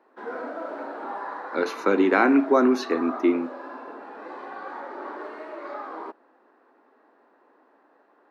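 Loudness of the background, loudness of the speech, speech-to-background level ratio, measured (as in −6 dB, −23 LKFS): −36.5 LKFS, −22.0 LKFS, 14.5 dB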